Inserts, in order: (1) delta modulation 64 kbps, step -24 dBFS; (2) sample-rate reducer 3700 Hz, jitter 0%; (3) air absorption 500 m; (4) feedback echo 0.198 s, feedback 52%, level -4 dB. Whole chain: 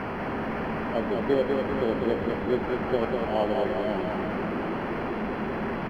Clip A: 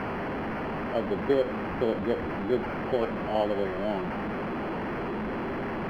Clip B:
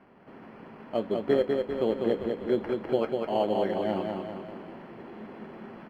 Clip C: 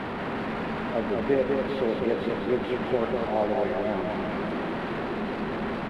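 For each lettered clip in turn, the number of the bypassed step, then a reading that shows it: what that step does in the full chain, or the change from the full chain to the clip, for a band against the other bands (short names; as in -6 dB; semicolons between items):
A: 4, echo-to-direct -2.5 dB to none; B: 1, 2 kHz band -6.5 dB; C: 2, 4 kHz band +1.5 dB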